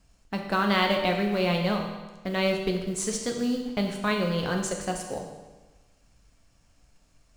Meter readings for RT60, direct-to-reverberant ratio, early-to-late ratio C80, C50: 1.2 s, 1.5 dB, 6.5 dB, 5.0 dB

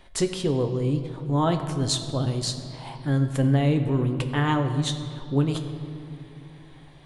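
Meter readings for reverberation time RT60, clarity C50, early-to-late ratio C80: 2.8 s, 9.0 dB, 9.5 dB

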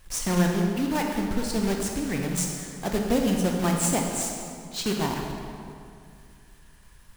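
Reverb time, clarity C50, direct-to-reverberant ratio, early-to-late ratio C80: 2.4 s, 2.5 dB, 1.0 dB, 3.5 dB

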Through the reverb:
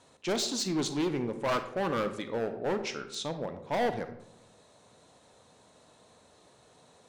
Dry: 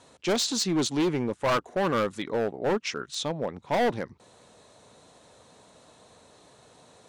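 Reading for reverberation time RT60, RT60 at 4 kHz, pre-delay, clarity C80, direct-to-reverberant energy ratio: 0.85 s, 0.45 s, 31 ms, 13.5 dB, 9.0 dB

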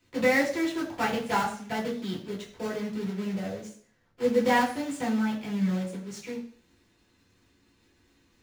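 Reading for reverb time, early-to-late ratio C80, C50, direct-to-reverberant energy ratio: 0.55 s, 11.5 dB, 8.5 dB, −6.0 dB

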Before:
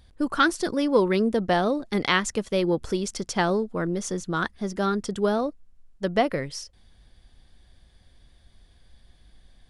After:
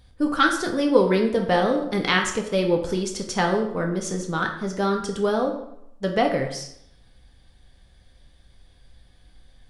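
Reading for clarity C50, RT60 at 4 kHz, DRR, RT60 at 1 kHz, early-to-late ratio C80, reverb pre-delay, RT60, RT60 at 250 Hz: 7.0 dB, 0.55 s, 1.5 dB, 0.75 s, 10.0 dB, 3 ms, 0.75 s, 0.75 s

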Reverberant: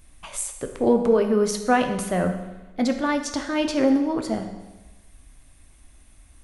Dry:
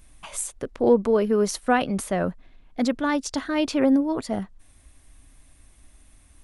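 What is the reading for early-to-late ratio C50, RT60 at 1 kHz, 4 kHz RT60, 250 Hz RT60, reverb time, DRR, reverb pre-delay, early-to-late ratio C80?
8.0 dB, 1.1 s, 1.0 s, 1.1 s, 1.1 s, 5.0 dB, 10 ms, 9.5 dB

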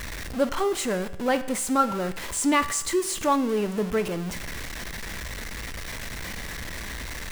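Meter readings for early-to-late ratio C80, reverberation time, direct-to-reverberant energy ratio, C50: 16.5 dB, 0.85 s, 10.5 dB, 14.5 dB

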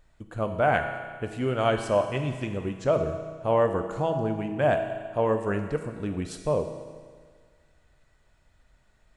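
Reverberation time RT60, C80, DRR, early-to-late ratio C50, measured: 1.7 s, 8.5 dB, 5.0 dB, 7.0 dB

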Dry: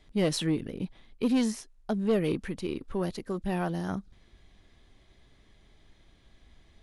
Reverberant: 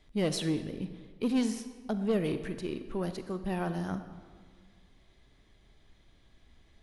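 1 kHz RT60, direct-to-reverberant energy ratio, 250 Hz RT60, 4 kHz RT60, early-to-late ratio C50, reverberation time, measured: 1.7 s, 9.5 dB, 1.8 s, 1.1 s, 10.0 dB, 1.7 s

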